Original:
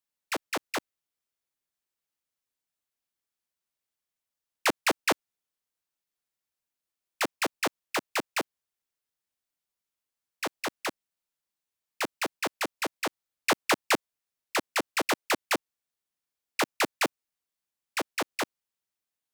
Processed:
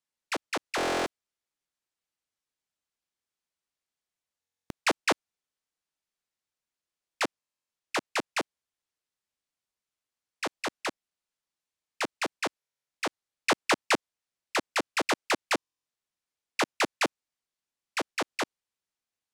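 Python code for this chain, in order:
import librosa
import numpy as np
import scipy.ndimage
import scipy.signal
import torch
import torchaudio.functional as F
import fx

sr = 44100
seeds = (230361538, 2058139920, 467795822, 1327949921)

y = scipy.signal.sosfilt(scipy.signal.butter(2, 8800.0, 'lowpass', fs=sr, output='sos'), x)
y = fx.buffer_glitch(y, sr, at_s=(0.76, 4.4, 7.39, 12.58, 15.56), block=1024, repeats=12)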